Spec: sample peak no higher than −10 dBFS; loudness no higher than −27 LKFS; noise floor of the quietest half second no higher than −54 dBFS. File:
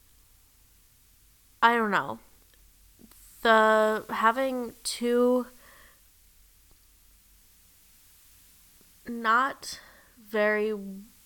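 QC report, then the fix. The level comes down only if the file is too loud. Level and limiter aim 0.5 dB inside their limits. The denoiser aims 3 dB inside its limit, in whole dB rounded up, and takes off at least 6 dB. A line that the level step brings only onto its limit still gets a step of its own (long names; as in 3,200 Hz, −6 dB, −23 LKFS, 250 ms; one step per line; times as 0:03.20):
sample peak −5.5 dBFS: out of spec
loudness −25.5 LKFS: out of spec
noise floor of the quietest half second −60 dBFS: in spec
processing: level −2 dB
brickwall limiter −10.5 dBFS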